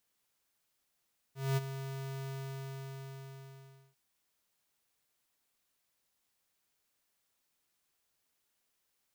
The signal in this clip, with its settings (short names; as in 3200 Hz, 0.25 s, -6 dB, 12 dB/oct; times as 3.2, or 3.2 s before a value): ADSR square 135 Hz, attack 0.219 s, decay 27 ms, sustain -11.5 dB, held 0.94 s, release 1.66 s -29 dBFS